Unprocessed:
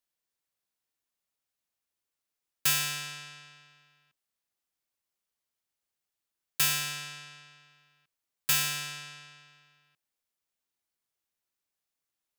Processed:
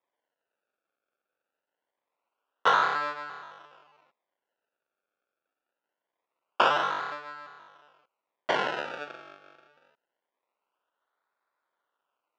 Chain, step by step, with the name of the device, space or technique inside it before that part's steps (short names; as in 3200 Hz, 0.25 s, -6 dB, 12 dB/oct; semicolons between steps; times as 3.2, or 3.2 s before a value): tilt -2 dB/oct; circuit-bent sampling toy (decimation with a swept rate 30×, swing 100% 0.24 Hz; speaker cabinet 550–4700 Hz, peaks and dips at 550 Hz +3 dB, 990 Hz +6 dB, 1400 Hz +9 dB, 2800 Hz +5 dB, 4400 Hz -4 dB); gain +7.5 dB